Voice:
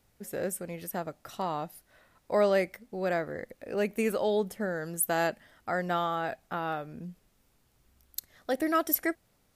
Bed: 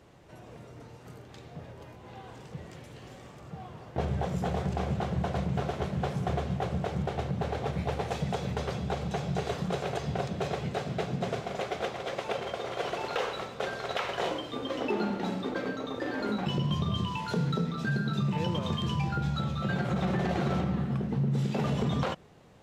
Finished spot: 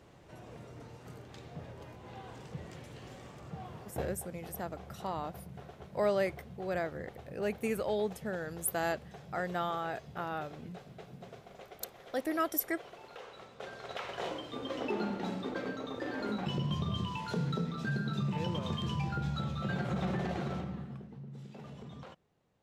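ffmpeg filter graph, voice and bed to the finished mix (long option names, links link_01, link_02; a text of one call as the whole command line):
ffmpeg -i stem1.wav -i stem2.wav -filter_complex "[0:a]adelay=3650,volume=-5dB[link_01];[1:a]volume=11.5dB,afade=type=out:start_time=3.78:duration=0.38:silence=0.158489,afade=type=in:start_time=13.23:duration=1.45:silence=0.223872,afade=type=out:start_time=20.07:duration=1.06:silence=0.188365[link_02];[link_01][link_02]amix=inputs=2:normalize=0" out.wav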